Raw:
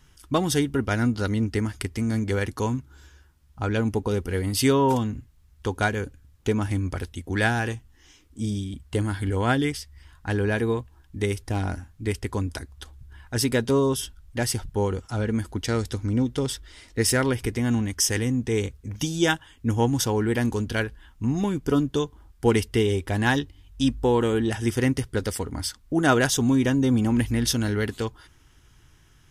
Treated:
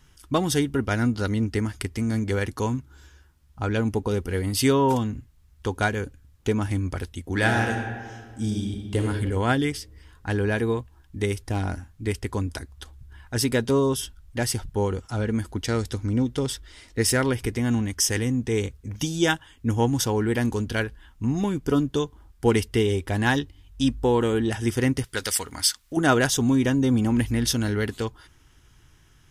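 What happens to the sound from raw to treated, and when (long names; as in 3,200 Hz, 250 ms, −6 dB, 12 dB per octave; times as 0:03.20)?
0:07.27–0:09.03: thrown reverb, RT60 1.7 s, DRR 2.5 dB
0:25.04–0:25.97: tilt shelving filter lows −9.5 dB, about 860 Hz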